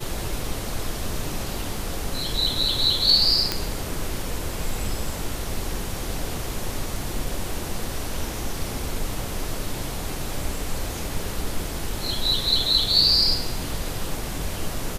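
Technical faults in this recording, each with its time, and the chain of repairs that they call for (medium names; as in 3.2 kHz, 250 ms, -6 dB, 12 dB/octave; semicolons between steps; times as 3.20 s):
3.52 s: pop -6 dBFS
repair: de-click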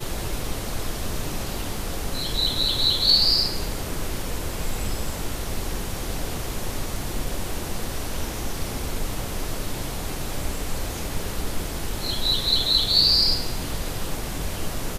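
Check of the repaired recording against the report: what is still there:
nothing left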